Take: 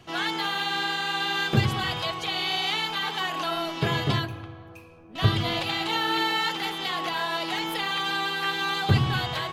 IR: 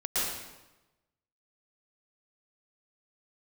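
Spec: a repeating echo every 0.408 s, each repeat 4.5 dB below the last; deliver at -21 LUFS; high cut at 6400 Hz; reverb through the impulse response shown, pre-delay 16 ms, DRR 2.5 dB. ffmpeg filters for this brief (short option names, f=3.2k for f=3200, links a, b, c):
-filter_complex "[0:a]lowpass=6.4k,aecho=1:1:408|816|1224|1632|2040|2448|2856|3264|3672:0.596|0.357|0.214|0.129|0.0772|0.0463|0.0278|0.0167|0.01,asplit=2[a][b];[1:a]atrim=start_sample=2205,adelay=16[c];[b][c]afir=irnorm=-1:irlink=0,volume=-11.5dB[d];[a][d]amix=inputs=2:normalize=0,volume=2dB"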